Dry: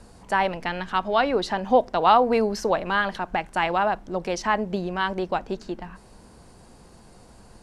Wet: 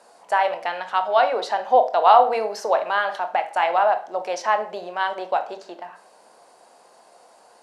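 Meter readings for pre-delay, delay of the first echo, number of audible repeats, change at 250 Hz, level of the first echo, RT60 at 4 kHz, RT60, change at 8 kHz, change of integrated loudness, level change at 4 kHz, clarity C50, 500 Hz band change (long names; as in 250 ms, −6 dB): 21 ms, no echo audible, no echo audible, −14.0 dB, no echo audible, 0.40 s, 0.45 s, −1.0 dB, +3.0 dB, −0.5 dB, 13.0 dB, +2.5 dB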